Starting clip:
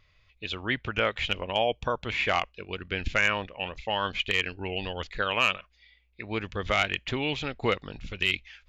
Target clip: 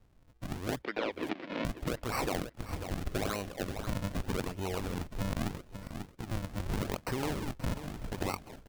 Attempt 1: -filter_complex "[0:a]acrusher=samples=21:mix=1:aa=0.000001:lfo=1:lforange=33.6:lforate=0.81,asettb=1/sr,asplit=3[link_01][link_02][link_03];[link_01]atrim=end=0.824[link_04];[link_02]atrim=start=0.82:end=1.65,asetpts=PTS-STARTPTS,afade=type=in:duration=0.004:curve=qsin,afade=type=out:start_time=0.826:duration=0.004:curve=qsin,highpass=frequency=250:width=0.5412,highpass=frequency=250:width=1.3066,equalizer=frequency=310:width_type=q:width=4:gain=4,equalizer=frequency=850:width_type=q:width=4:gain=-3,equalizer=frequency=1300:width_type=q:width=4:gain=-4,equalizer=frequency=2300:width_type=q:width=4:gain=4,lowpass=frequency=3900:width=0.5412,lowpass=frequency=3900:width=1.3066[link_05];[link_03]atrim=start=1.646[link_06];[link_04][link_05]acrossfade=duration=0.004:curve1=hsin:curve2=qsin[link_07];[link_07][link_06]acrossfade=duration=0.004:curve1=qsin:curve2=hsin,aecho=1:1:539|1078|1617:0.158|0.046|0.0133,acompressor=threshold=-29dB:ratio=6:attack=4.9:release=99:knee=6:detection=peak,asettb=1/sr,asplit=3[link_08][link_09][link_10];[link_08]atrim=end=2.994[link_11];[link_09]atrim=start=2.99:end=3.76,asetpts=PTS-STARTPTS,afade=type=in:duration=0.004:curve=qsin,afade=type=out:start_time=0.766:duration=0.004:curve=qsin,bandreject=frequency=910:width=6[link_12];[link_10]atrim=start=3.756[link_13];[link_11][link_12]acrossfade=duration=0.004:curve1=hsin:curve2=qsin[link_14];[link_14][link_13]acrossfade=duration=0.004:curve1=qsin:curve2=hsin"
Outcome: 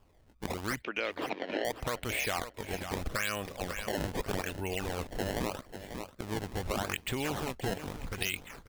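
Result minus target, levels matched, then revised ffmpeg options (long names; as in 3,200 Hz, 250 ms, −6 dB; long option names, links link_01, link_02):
sample-and-hold swept by an LFO: distortion −10 dB
-filter_complex "[0:a]acrusher=samples=63:mix=1:aa=0.000001:lfo=1:lforange=101:lforate=0.81,asettb=1/sr,asplit=3[link_01][link_02][link_03];[link_01]atrim=end=0.824[link_04];[link_02]atrim=start=0.82:end=1.65,asetpts=PTS-STARTPTS,afade=type=in:duration=0.004:curve=qsin,afade=type=out:start_time=0.826:duration=0.004:curve=qsin,highpass=frequency=250:width=0.5412,highpass=frequency=250:width=1.3066,equalizer=frequency=310:width_type=q:width=4:gain=4,equalizer=frequency=850:width_type=q:width=4:gain=-3,equalizer=frequency=1300:width_type=q:width=4:gain=-4,equalizer=frequency=2300:width_type=q:width=4:gain=4,lowpass=frequency=3900:width=0.5412,lowpass=frequency=3900:width=1.3066[link_05];[link_03]atrim=start=1.646[link_06];[link_04][link_05]acrossfade=duration=0.004:curve1=hsin:curve2=qsin[link_07];[link_07][link_06]acrossfade=duration=0.004:curve1=qsin:curve2=hsin,aecho=1:1:539|1078|1617:0.158|0.046|0.0133,acompressor=threshold=-29dB:ratio=6:attack=4.9:release=99:knee=6:detection=peak,asettb=1/sr,asplit=3[link_08][link_09][link_10];[link_08]atrim=end=2.994[link_11];[link_09]atrim=start=2.99:end=3.76,asetpts=PTS-STARTPTS,afade=type=in:duration=0.004:curve=qsin,afade=type=out:start_time=0.766:duration=0.004:curve=qsin,bandreject=frequency=910:width=6[link_12];[link_10]atrim=start=3.756[link_13];[link_11][link_12]acrossfade=duration=0.004:curve1=hsin:curve2=qsin[link_14];[link_14][link_13]acrossfade=duration=0.004:curve1=qsin:curve2=hsin"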